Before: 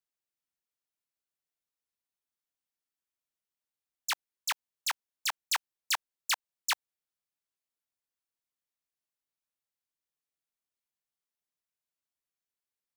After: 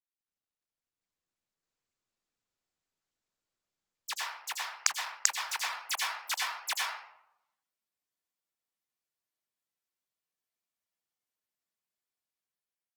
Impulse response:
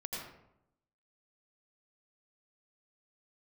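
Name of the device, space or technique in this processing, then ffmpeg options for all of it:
far-field microphone of a smart speaker: -filter_complex "[1:a]atrim=start_sample=2205[s0];[0:a][s0]afir=irnorm=-1:irlink=0,highpass=f=140:p=1,dynaudnorm=f=460:g=5:m=2.37,volume=0.422" -ar 48000 -c:a libopus -b:a 16k

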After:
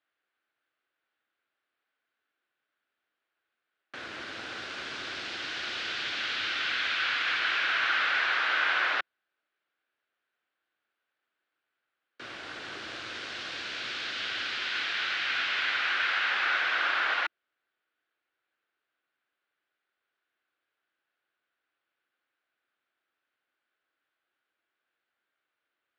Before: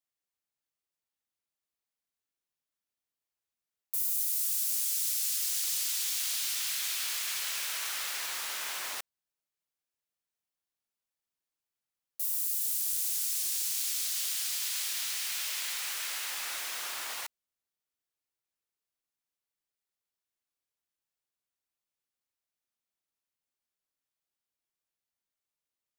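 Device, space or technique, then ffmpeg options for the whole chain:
overdrive pedal into a guitar cabinet: -filter_complex "[0:a]asplit=2[s0][s1];[s1]highpass=f=720:p=1,volume=3.98,asoftclip=type=tanh:threshold=0.126[s2];[s0][s2]amix=inputs=2:normalize=0,lowpass=f=2100:p=1,volume=0.501,highpass=100,equalizer=f=170:t=q:w=4:g=-9,equalizer=f=330:t=q:w=4:g=5,equalizer=f=940:t=q:w=4:g=-5,equalizer=f=1500:t=q:w=4:g=9,lowpass=f=3700:w=0.5412,lowpass=f=3700:w=1.3066,volume=2.37"

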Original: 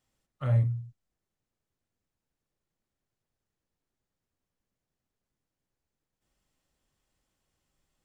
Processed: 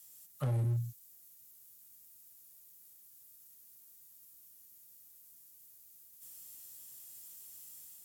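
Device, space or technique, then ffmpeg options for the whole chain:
FM broadcast chain: -filter_complex "[0:a]highpass=76,dynaudnorm=f=120:g=5:m=1.78,acrossover=split=230|800[s0][s1][s2];[s0]acompressor=threshold=0.0562:ratio=4[s3];[s1]acompressor=threshold=0.0178:ratio=4[s4];[s2]acompressor=threshold=0.00112:ratio=4[s5];[s3][s4][s5]amix=inputs=3:normalize=0,aemphasis=mode=production:type=75fm,alimiter=level_in=1.19:limit=0.0631:level=0:latency=1,volume=0.841,asoftclip=type=hard:threshold=0.0355,lowpass=f=15000:w=0.5412,lowpass=f=15000:w=1.3066,aemphasis=mode=production:type=75fm,volume=1.19"

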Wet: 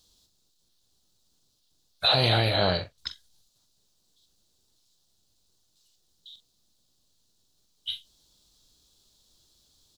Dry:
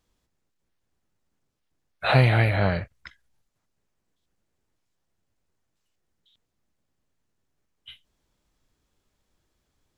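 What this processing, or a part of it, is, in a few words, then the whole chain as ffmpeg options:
over-bright horn tweeter: -filter_complex "[0:a]asplit=2[s0][s1];[s1]adelay=44,volume=0.282[s2];[s0][s2]amix=inputs=2:normalize=0,asettb=1/sr,asplit=3[s3][s4][s5];[s3]atrim=end=2.084[s6];[s4]atrim=start=2.08:end=2.98,asetpts=PTS-STARTPTS,afade=t=in:d=0.004:c=qsin,afade=t=out:st=0.896:d=0.004:c=qsin,bass=f=250:g=-8,treble=f=4000:g=-9[s7];[s5]atrim=start=2.976[s8];[s6][s7]acrossfade=d=0.004:c1=hsin:c2=qsin[s9];[s9][s8]acrossfade=d=0.004:c1=qsin:c2=hsin,highshelf=f=2900:t=q:w=3:g=11,alimiter=limit=0.2:level=0:latency=1:release=23,volume=1.26"

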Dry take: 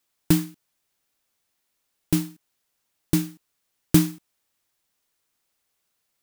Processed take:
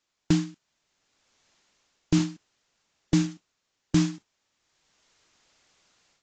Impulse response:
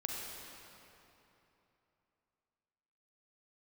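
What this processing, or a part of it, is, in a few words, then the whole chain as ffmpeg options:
low-bitrate web radio: -af "dynaudnorm=f=510:g=3:m=5.01,alimiter=limit=0.355:level=0:latency=1:release=78" -ar 16000 -c:a aac -b:a 32k

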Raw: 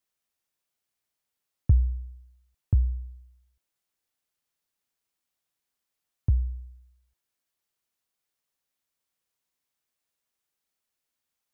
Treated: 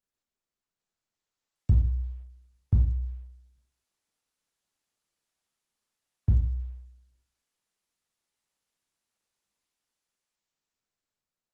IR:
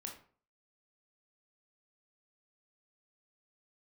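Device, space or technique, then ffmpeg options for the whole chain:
speakerphone in a meeting room: -filter_complex "[1:a]atrim=start_sample=2205[s0];[0:a][s0]afir=irnorm=-1:irlink=0,dynaudnorm=f=130:g=21:m=4.73,volume=0.422" -ar 48000 -c:a libopus -b:a 16k

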